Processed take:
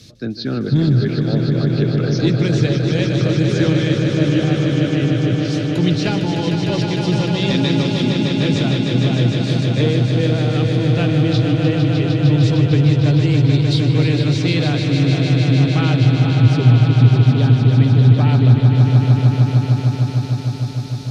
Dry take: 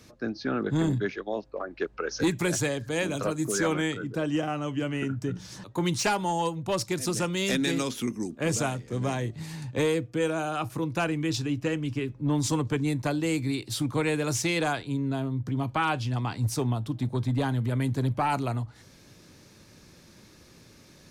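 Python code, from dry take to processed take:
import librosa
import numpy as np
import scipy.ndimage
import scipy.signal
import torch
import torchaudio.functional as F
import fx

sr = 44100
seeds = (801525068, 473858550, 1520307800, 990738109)

y = fx.env_lowpass_down(x, sr, base_hz=2500.0, full_db=-27.0)
y = fx.graphic_eq(y, sr, hz=(125, 1000, 2000, 4000), db=(10, -11, -3, 12))
y = fx.echo_swell(y, sr, ms=152, loudest=5, wet_db=-7.0)
y = y * 10.0 ** (5.5 / 20.0)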